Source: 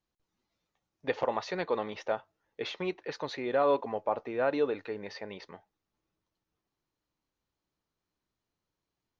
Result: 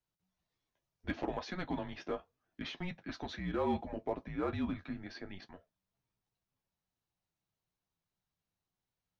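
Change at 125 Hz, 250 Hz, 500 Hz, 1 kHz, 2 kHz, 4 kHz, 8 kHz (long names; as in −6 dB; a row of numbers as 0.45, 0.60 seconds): +4.0 dB, 0.0 dB, −10.5 dB, −8.0 dB, −6.5 dB, −5.0 dB, can't be measured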